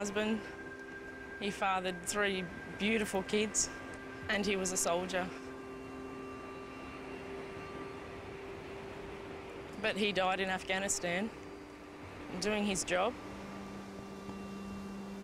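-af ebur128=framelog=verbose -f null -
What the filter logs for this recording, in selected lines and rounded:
Integrated loudness:
  I:         -36.9 LUFS
  Threshold: -47.0 LUFS
Loudness range:
  LRA:        11.0 LU
  Threshold: -56.8 LUFS
  LRA low:   -45.3 LUFS
  LRA high:  -34.3 LUFS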